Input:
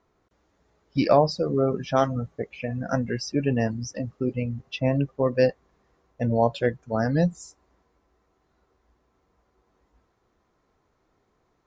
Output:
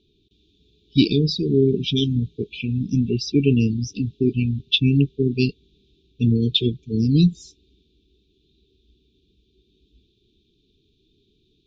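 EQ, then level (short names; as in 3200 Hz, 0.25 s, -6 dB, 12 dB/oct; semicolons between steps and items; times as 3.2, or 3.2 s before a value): brick-wall FIR band-stop 450–2300 Hz; synth low-pass 3600 Hz, resonance Q 8.6; bell 1700 Hz -10.5 dB 1.5 oct; +7.5 dB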